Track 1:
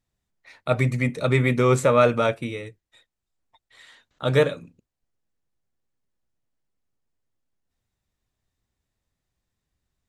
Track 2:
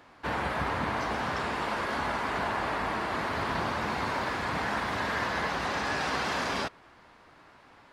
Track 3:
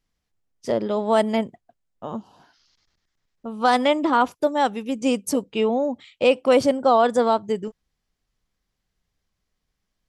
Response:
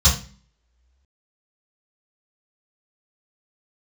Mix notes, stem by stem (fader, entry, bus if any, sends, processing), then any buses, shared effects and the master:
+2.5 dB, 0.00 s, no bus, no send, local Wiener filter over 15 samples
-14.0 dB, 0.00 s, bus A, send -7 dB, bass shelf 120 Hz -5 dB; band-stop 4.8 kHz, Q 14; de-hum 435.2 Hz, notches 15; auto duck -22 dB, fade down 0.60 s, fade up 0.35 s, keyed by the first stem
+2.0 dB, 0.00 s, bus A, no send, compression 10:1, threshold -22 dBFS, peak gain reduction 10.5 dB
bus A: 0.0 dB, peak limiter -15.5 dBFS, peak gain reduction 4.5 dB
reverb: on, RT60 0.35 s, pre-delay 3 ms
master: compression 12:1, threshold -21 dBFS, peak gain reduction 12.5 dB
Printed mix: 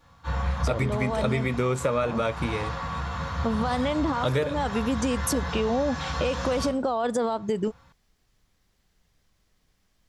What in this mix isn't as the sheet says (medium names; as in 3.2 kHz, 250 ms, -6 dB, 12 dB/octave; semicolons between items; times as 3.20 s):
stem 1: missing local Wiener filter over 15 samples; stem 3 +2.0 dB -> +8.5 dB